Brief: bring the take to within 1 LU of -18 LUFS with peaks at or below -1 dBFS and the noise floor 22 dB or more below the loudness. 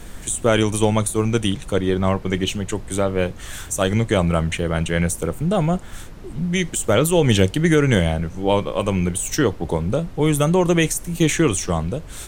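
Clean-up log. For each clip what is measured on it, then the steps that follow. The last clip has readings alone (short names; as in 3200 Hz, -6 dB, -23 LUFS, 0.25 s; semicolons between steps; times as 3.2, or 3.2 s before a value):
noise floor -36 dBFS; noise floor target -42 dBFS; loudness -20.0 LUFS; peak -1.0 dBFS; loudness target -18.0 LUFS
-> noise print and reduce 6 dB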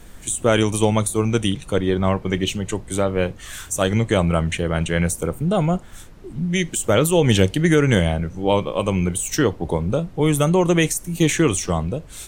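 noise floor -41 dBFS; noise floor target -43 dBFS
-> noise print and reduce 6 dB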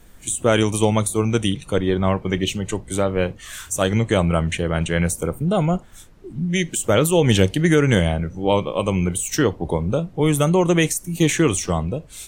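noise floor -45 dBFS; loudness -20.5 LUFS; peak -1.0 dBFS; loudness target -18.0 LUFS
-> gain +2.5 dB; limiter -1 dBFS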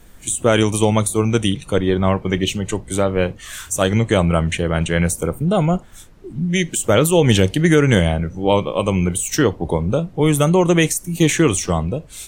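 loudness -18.0 LUFS; peak -1.0 dBFS; noise floor -42 dBFS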